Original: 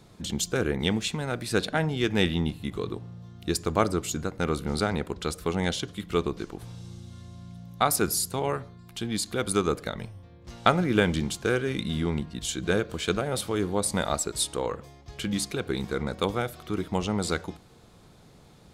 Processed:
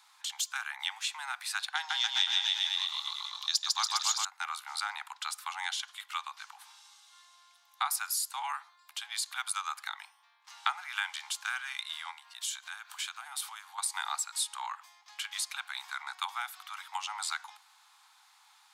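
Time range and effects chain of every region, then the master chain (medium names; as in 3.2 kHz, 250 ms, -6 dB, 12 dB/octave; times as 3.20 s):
1.75–4.25 s: high-order bell 4.7 kHz +13.5 dB 1.3 oct + bouncing-ball echo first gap 150 ms, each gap 0.9×, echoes 5, each echo -2 dB
12.11–13.78 s: compression 5:1, threshold -31 dBFS + treble shelf 8.3 kHz +7 dB
whole clip: steep high-pass 800 Hz 96 dB/octave; compression 2:1, threshold -32 dBFS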